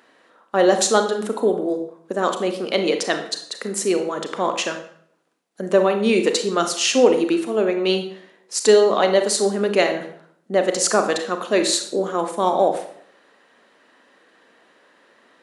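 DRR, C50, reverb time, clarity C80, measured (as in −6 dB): 6.0 dB, 8.5 dB, 0.65 s, 12.0 dB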